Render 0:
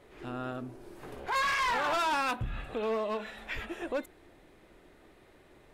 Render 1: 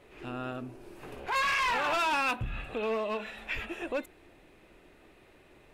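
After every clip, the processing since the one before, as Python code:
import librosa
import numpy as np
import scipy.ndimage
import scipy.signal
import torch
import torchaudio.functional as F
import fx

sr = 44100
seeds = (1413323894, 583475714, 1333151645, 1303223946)

y = fx.peak_eq(x, sr, hz=2600.0, db=8.0, octaves=0.27)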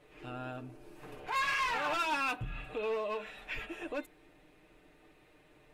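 y = x + 0.6 * np.pad(x, (int(6.6 * sr / 1000.0), 0))[:len(x)]
y = F.gain(torch.from_numpy(y), -5.5).numpy()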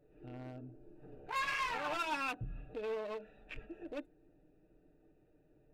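y = fx.wiener(x, sr, points=41)
y = F.gain(torch.from_numpy(y), -2.5).numpy()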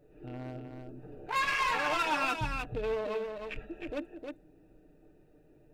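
y = x + 10.0 ** (-5.5 / 20.0) * np.pad(x, (int(311 * sr / 1000.0), 0))[:len(x)]
y = F.gain(torch.from_numpy(y), 6.0).numpy()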